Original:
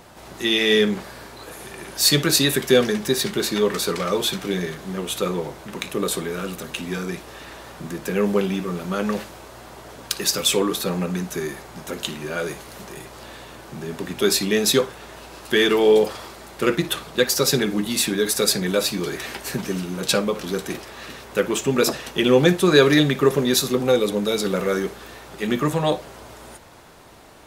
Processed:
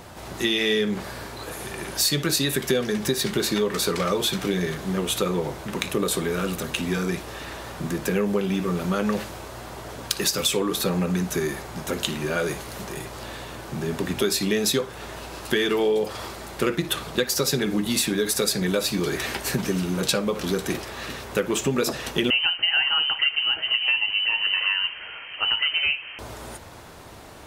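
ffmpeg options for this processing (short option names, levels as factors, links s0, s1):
-filter_complex "[0:a]asettb=1/sr,asplit=3[s0][s1][s2];[s0]atrim=end=22.304[s3];[s1]atrim=start=22.3:end=26.19,asetpts=PTS-STARTPTS,afade=t=in:d=0.004:c=qsin,afade=t=out:st=3.886:d=0.004:c=qsin,lowpass=f=2700:t=q:w=0.5098,lowpass=f=2700:t=q:w=0.6013,lowpass=f=2700:t=q:w=0.9,lowpass=f=2700:t=q:w=2.563,afreqshift=-3200[s4];[s2]atrim=start=26.186[s5];[s3][s4]acrossfade=d=0.004:c1=hsin:c2=qsin[s6];[s6][s5]acrossfade=d=0.004:c1=qsin:c2=hsin,equalizer=f=87:w=1.3:g=5.5,acompressor=threshold=0.0708:ratio=5,volume=1.41"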